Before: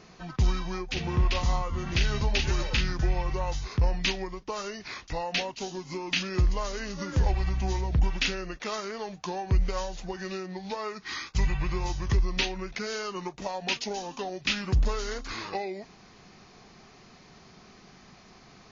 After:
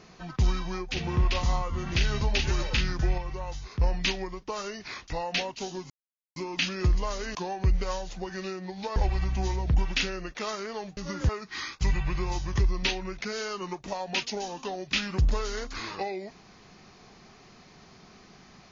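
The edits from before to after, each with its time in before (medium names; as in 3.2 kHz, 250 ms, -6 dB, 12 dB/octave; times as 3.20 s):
3.18–3.80 s: gain -5.5 dB
5.90 s: insert silence 0.46 s
6.89–7.21 s: swap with 9.22–10.83 s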